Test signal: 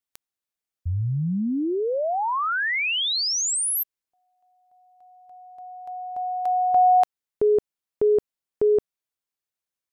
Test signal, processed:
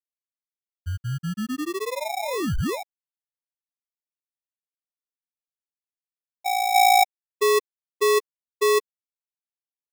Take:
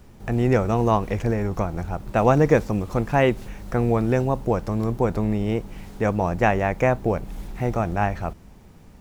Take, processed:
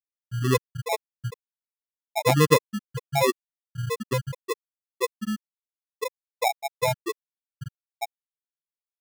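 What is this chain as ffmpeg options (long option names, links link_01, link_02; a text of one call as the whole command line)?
ffmpeg -i in.wav -filter_complex "[0:a]asplit=2[link_01][link_02];[link_02]adelay=150,highpass=300,lowpass=3400,asoftclip=type=hard:threshold=-13.5dB,volume=-16dB[link_03];[link_01][link_03]amix=inputs=2:normalize=0,adynamicequalizer=threshold=0.0178:dfrequency=1600:dqfactor=1.7:tfrequency=1600:tqfactor=1.7:attack=5:release=100:ratio=0.375:range=1.5:mode=boostabove:tftype=bell,acrossover=split=250|540|2800[link_04][link_05][link_06][link_07];[link_07]asoftclip=type=tanh:threshold=-34.5dB[link_08];[link_04][link_05][link_06][link_08]amix=inputs=4:normalize=0,afftfilt=real='re*gte(hypot(re,im),0.794)':imag='im*gte(hypot(re,im),0.794)':win_size=1024:overlap=0.75,acrusher=samples=29:mix=1:aa=0.000001" out.wav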